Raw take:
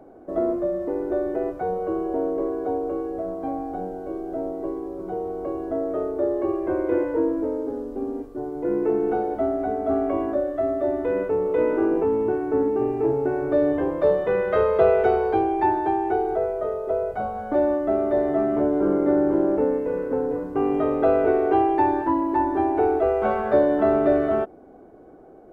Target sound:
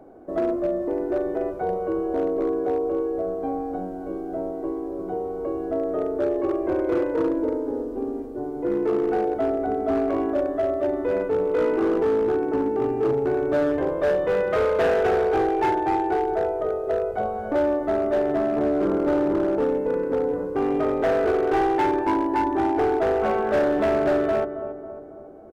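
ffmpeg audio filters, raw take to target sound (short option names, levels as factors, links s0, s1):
-filter_complex "[0:a]asplit=2[s0][s1];[s1]adelay=275,lowpass=f=1500:p=1,volume=0.299,asplit=2[s2][s3];[s3]adelay=275,lowpass=f=1500:p=1,volume=0.55,asplit=2[s4][s5];[s5]adelay=275,lowpass=f=1500:p=1,volume=0.55,asplit=2[s6][s7];[s7]adelay=275,lowpass=f=1500:p=1,volume=0.55,asplit=2[s8][s9];[s9]adelay=275,lowpass=f=1500:p=1,volume=0.55,asplit=2[s10][s11];[s11]adelay=275,lowpass=f=1500:p=1,volume=0.55[s12];[s0][s2][s4][s6][s8][s10][s12]amix=inputs=7:normalize=0,volume=7.08,asoftclip=hard,volume=0.141"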